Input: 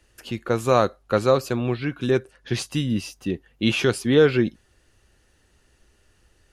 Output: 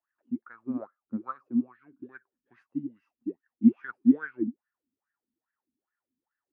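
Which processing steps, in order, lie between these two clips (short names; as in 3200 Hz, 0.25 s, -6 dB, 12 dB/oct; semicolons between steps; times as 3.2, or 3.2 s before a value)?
graphic EQ 125/250/500/1000/2000/4000/8000 Hz +4/+10/-7/+7/+4/-10/-9 dB; wah 2.4 Hz 230–1700 Hz, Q 9.5; upward expander 1.5:1, over -41 dBFS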